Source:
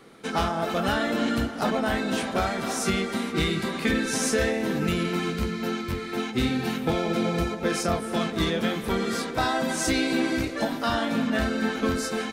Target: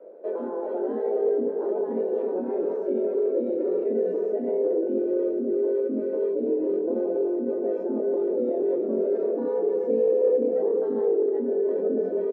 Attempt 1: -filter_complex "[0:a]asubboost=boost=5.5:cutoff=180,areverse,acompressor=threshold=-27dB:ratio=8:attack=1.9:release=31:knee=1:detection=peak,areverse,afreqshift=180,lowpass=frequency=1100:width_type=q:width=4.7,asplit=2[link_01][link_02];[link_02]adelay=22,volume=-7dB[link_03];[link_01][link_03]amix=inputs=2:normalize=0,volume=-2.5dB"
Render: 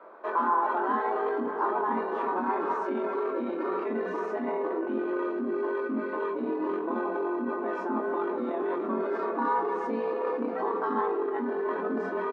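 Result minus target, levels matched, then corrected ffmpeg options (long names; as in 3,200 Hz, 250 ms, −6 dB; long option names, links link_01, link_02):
1,000 Hz band +18.5 dB
-filter_complex "[0:a]asubboost=boost=5.5:cutoff=180,areverse,acompressor=threshold=-27dB:ratio=8:attack=1.9:release=31:knee=1:detection=peak,areverse,afreqshift=180,lowpass=frequency=510:width_type=q:width=4.7,asplit=2[link_01][link_02];[link_02]adelay=22,volume=-7dB[link_03];[link_01][link_03]amix=inputs=2:normalize=0,volume=-2.5dB"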